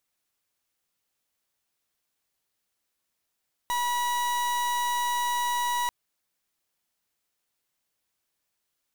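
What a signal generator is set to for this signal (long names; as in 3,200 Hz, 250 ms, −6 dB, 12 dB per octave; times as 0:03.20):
pulse wave 970 Hz, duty 39% −27 dBFS 2.19 s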